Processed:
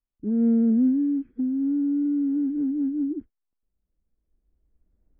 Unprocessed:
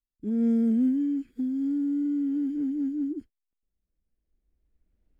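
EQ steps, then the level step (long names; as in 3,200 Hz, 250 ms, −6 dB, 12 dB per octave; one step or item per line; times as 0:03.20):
low-pass filter 1,400 Hz 12 dB per octave
high-frequency loss of the air 190 metres
+3.5 dB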